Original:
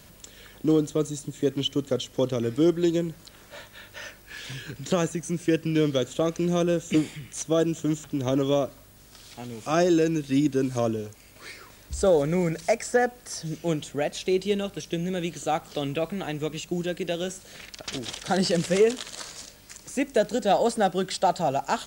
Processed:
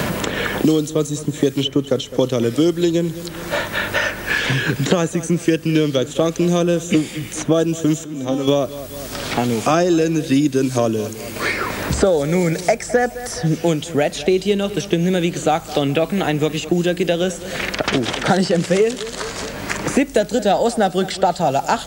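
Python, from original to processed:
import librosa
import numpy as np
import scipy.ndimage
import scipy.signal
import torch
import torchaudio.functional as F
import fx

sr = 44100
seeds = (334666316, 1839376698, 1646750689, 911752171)

y = fx.comb_fb(x, sr, f0_hz=260.0, decay_s=0.6, harmonics='all', damping=0.0, mix_pct=90, at=(8.03, 8.47), fade=0.02)
y = fx.echo_feedback(y, sr, ms=208, feedback_pct=36, wet_db=-19.5)
y = fx.band_squash(y, sr, depth_pct=100)
y = y * librosa.db_to_amplitude(7.0)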